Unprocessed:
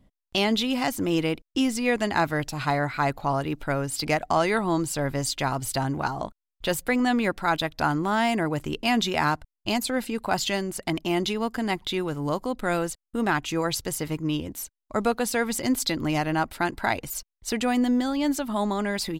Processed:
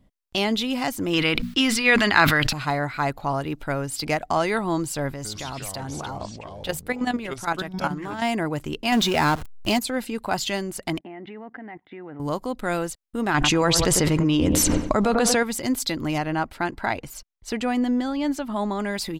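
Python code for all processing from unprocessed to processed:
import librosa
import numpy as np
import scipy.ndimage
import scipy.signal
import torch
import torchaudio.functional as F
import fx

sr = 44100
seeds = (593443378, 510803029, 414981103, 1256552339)

y = fx.chain(x, sr, fx.band_shelf(hz=2300.0, db=10.0, octaves=2.4),
    fx.hum_notches(base_hz=60, count=4),
    fx.sustainer(db_per_s=33.0), at=(1.13, 2.53))
y = fx.chain(y, sr, fx.level_steps(step_db=11),
    fx.echo_pitch(ms=101, semitones=-5, count=2, db_per_echo=-6.0), at=(5.14, 8.22))
y = fx.chain(y, sr, fx.zero_step(step_db=-33.5),
    fx.leveller(passes=1), at=(8.92, 9.79))
y = fx.chain(y, sr, fx.cabinet(low_hz=160.0, low_slope=12, high_hz=2200.0, hz=(280.0, 750.0, 1100.0, 1900.0), db=(5, 7, -4, 9)),
    fx.level_steps(step_db=19), at=(10.99, 12.2))
y = fx.chain(y, sr, fx.lowpass(hz=7800.0, slope=12),
    fx.echo_wet_lowpass(ms=96, feedback_pct=35, hz=1500.0, wet_db=-12.0),
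    fx.env_flatten(amount_pct=100), at=(13.34, 15.43))
y = fx.chain(y, sr, fx.high_shelf(hz=6700.0, db=-10.5),
    fx.notch(hz=3700.0, q=29.0), at=(16.18, 18.8))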